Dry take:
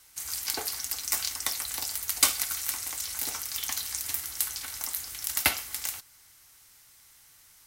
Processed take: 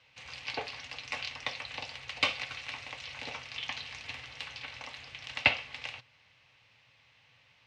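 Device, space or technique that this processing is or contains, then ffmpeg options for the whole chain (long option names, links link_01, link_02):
guitar cabinet: -af "highpass=92,equalizer=frequency=120:width_type=q:width=4:gain=10,equalizer=frequency=350:width_type=q:width=4:gain=-10,equalizer=frequency=530:width_type=q:width=4:gain=8,equalizer=frequency=1400:width_type=q:width=4:gain=-7,equalizer=frequency=2600:width_type=q:width=4:gain=8,lowpass=frequency=3600:width=0.5412,lowpass=frequency=3600:width=1.3066"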